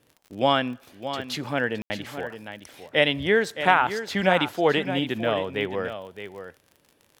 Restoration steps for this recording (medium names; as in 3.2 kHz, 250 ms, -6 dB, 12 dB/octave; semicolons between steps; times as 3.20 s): de-click; room tone fill 1.82–1.90 s; inverse comb 616 ms -10.5 dB